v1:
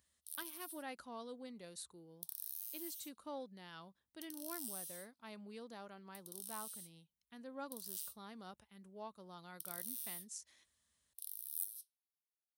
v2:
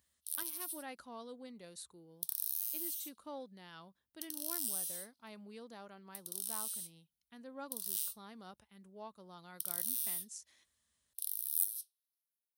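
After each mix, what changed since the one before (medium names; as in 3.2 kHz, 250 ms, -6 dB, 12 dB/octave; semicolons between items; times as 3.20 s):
background +8.5 dB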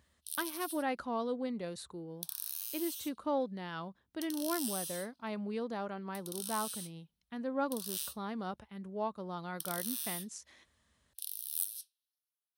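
master: remove pre-emphasis filter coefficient 0.8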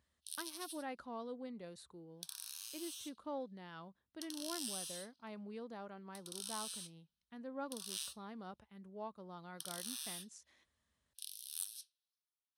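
speech -10.0 dB; background: add low-pass 8.3 kHz 12 dB/octave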